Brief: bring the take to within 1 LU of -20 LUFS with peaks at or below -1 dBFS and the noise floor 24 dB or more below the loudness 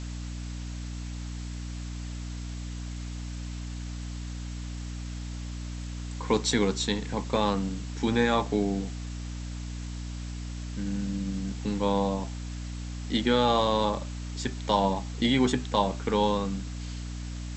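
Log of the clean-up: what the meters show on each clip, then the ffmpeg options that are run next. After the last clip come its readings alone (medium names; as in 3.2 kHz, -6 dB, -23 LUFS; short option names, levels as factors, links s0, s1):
hum 60 Hz; highest harmonic 300 Hz; hum level -33 dBFS; noise floor -36 dBFS; noise floor target -55 dBFS; loudness -30.5 LUFS; peak level -9.0 dBFS; loudness target -20.0 LUFS
-> -af "bandreject=f=60:t=h:w=4,bandreject=f=120:t=h:w=4,bandreject=f=180:t=h:w=4,bandreject=f=240:t=h:w=4,bandreject=f=300:t=h:w=4"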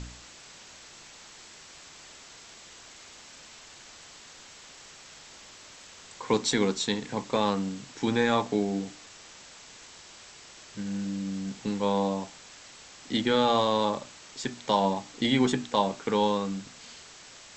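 hum not found; noise floor -50 dBFS; noise floor target -52 dBFS
-> -af "afftdn=nr=6:nf=-50"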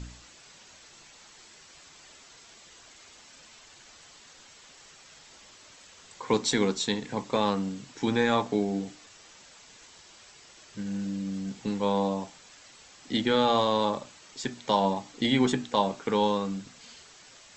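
noise floor -53 dBFS; loudness -28.0 LUFS; peak level -9.5 dBFS; loudness target -20.0 LUFS
-> -af "volume=2.51"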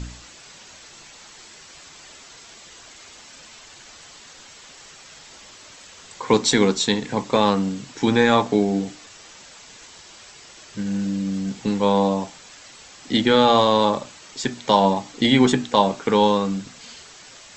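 loudness -20.0 LUFS; peak level -1.5 dBFS; noise floor -45 dBFS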